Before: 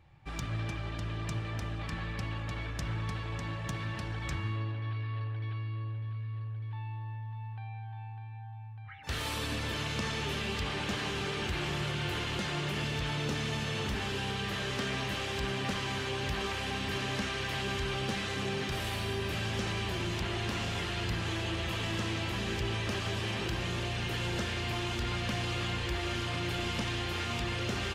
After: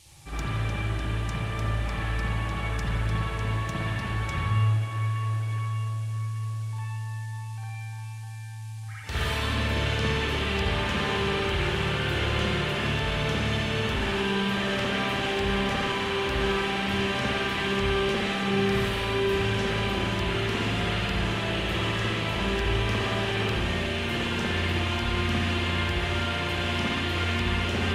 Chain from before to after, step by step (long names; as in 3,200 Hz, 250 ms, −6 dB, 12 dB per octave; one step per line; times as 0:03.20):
spring reverb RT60 1 s, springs 56 ms, chirp 35 ms, DRR −7 dB
noise in a band 2,200–11,000 Hz −56 dBFS